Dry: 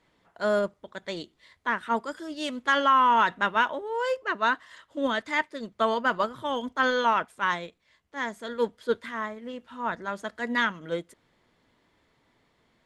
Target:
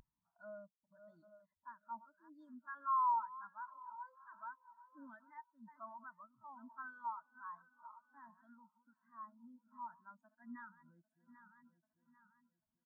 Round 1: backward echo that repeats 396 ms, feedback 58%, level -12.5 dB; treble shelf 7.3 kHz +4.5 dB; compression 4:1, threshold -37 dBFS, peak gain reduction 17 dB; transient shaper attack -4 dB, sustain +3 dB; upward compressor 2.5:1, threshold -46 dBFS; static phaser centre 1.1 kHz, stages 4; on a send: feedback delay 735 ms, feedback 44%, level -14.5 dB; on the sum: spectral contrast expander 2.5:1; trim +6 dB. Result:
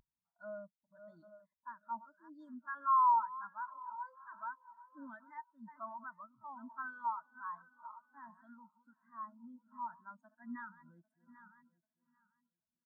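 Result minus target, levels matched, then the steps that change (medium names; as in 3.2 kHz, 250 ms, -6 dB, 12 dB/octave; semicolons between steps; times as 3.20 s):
compression: peak gain reduction -5.5 dB
change: compression 4:1, threshold -44.5 dBFS, peak gain reduction 22.5 dB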